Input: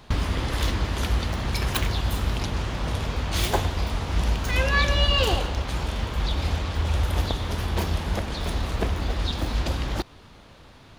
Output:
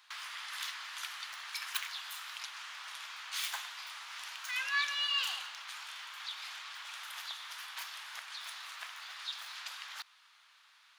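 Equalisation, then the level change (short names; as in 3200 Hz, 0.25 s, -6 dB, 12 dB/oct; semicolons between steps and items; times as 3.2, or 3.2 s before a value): inverse Chebyshev high-pass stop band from 350 Hz, stop band 60 dB; -7.5 dB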